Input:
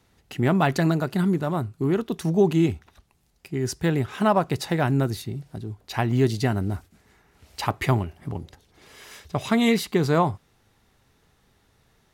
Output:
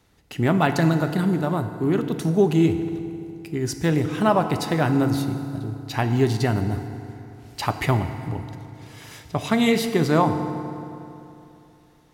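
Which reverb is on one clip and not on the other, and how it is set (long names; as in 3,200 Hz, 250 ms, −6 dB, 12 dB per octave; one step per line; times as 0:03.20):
feedback delay network reverb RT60 2.9 s, high-frequency decay 0.65×, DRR 7.5 dB
level +1 dB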